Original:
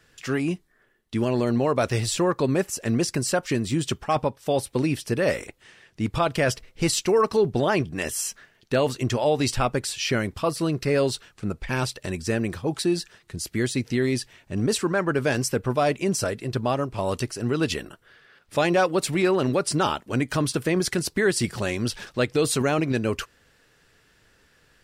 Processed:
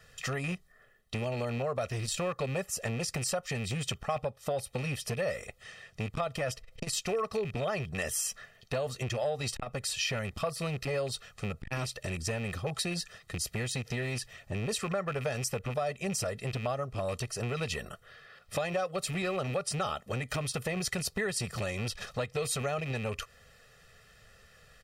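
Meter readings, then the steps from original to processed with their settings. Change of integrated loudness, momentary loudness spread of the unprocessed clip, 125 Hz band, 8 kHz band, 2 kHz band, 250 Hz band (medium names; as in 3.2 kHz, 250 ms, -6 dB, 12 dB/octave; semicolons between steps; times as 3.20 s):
-9.0 dB, 7 LU, -7.0 dB, -5.5 dB, -7.5 dB, -14.0 dB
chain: rattle on loud lows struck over -29 dBFS, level -24 dBFS; comb 1.6 ms, depth 94%; compression 6:1, threshold -28 dBFS, peak gain reduction 15 dB; transformer saturation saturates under 460 Hz; trim -1 dB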